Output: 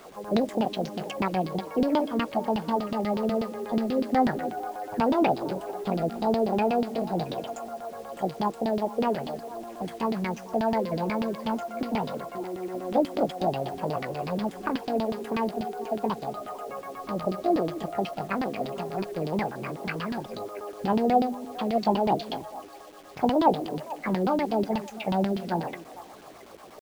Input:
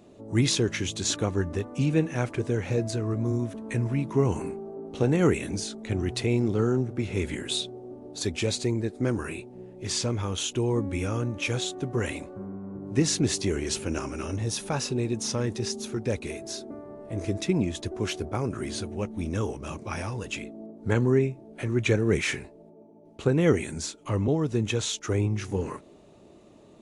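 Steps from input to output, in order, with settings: rattling part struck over -35 dBFS, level -25 dBFS; pitch shift +11 st; LFO low-pass saw down 8.2 Hz 230–3500 Hz; in parallel at +2 dB: compressor 4:1, threshold -38 dBFS, peak gain reduction 21.5 dB; on the sum: delay with a stepping band-pass 0.224 s, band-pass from 290 Hz, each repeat 1.4 oct, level -11.5 dB; requantised 8-bit, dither none; gain -4 dB

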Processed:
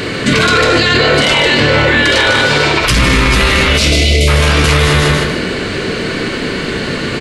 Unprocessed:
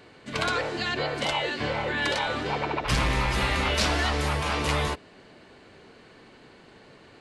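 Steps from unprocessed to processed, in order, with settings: 2.31–2.9 pre-emphasis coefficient 0.8; 3.76–4.28 spectral gain 720–2000 Hz -28 dB; bell 800 Hz -11.5 dB 0.74 oct; feedback echo 0.149 s, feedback 26%, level -7 dB; reverb RT60 0.50 s, pre-delay 13 ms, DRR 5.5 dB; maximiser +34.5 dB; gain -1 dB

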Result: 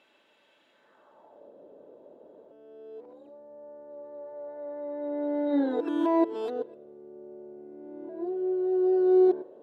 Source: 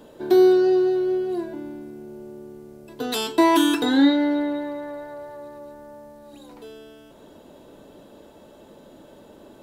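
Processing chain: whole clip reversed; band-pass sweep 2400 Hz -> 500 Hz, 0.68–1.53; spring tank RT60 1.1 s, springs 42 ms, chirp 50 ms, DRR 18.5 dB

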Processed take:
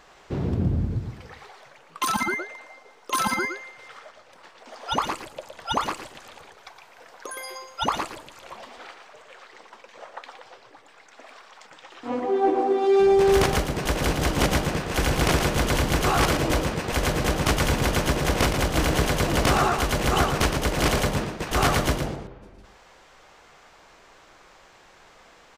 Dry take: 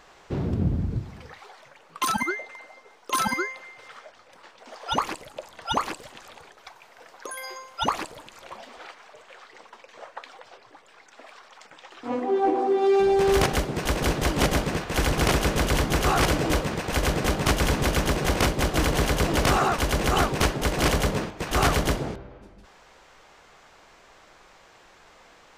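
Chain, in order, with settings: echo 0.115 s -7 dB

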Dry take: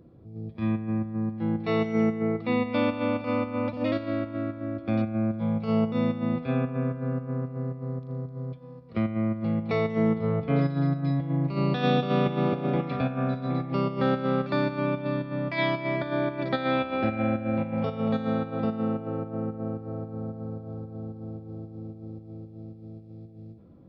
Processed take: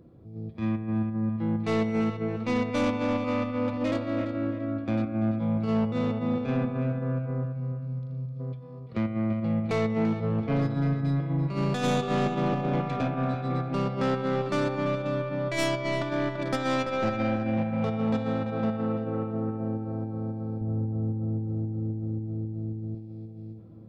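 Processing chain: tracing distortion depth 0.13 ms; 7.44–8.4 spectral gain 250–2100 Hz -15 dB; darkening echo 0.338 s, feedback 39%, low-pass 2900 Hz, level -8 dB; soft clip -18 dBFS, distortion -19 dB; 20.61–22.95 tilt -2 dB/oct

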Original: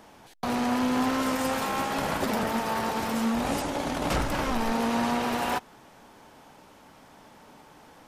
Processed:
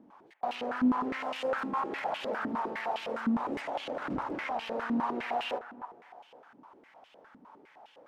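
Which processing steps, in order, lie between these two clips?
in parallel at -2 dB: limiter -23.5 dBFS, peak gain reduction 8 dB; on the sum: narrowing echo 0.271 s, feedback 48%, band-pass 770 Hz, level -10 dB; stepped band-pass 9.8 Hz 260–2900 Hz

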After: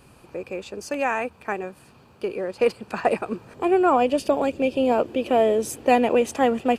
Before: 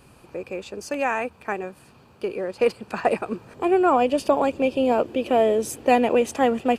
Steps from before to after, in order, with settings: 4.18–4.74 bell 1000 Hz -6.5 dB 0.77 oct

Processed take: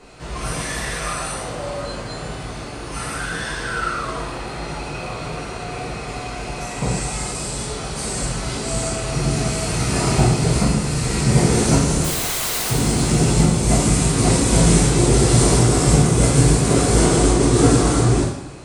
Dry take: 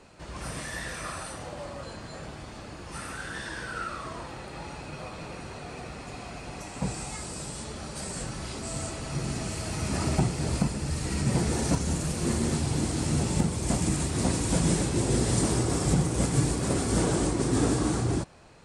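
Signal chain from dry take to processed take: 12.04–12.7 wrapped overs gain 29.5 dB; two-slope reverb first 0.65 s, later 2.2 s, from -18 dB, DRR -5.5 dB; gain +4.5 dB

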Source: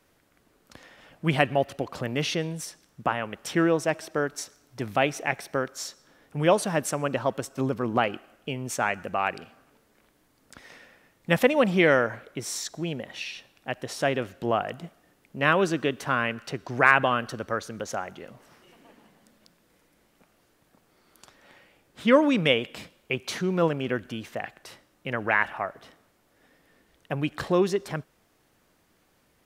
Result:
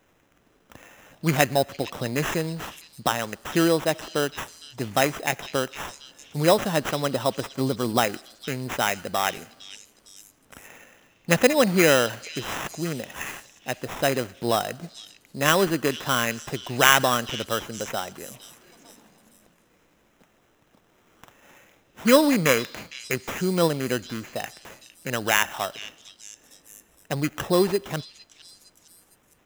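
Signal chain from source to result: sample-rate reducer 4500 Hz, jitter 0%; delay with a stepping band-pass 0.458 s, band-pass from 3800 Hz, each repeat 0.7 oct, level -9.5 dB; gain +2 dB

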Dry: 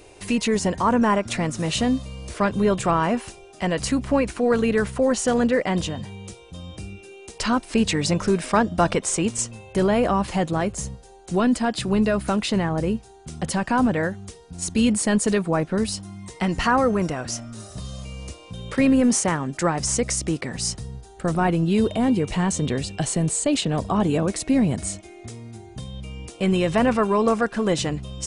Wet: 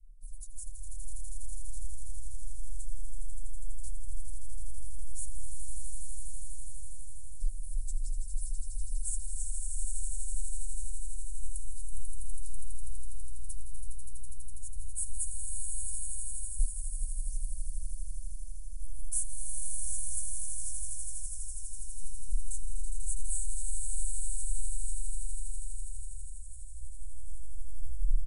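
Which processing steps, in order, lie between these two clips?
tape stop at the end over 0.86 s; inverse Chebyshev band-stop 170–2900 Hz, stop band 80 dB; comb 1.3 ms, depth 52%; low-pass opened by the level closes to 2600 Hz, open at -36.5 dBFS; swelling echo 82 ms, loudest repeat 8, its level -7 dB; gain +8.5 dB

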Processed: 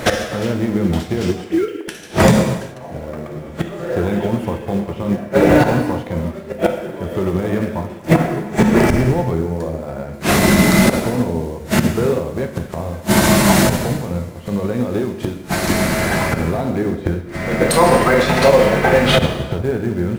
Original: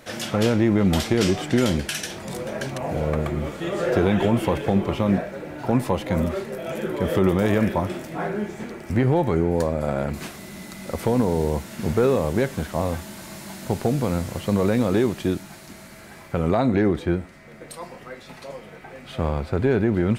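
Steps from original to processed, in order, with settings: 1.44–1.88 sine-wave speech; high shelf 2100 Hz -5.5 dB; in parallel at -4 dB: short-mantissa float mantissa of 2-bit; on the sum: flipped gate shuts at -19 dBFS, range -26 dB; non-linear reverb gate 0.45 s falling, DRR 3 dB; maximiser +24.5 dB; upward expander 1.5:1, over -26 dBFS

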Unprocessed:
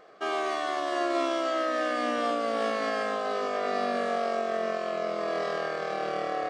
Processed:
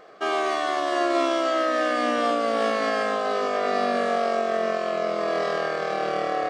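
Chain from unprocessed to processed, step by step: gain +5 dB

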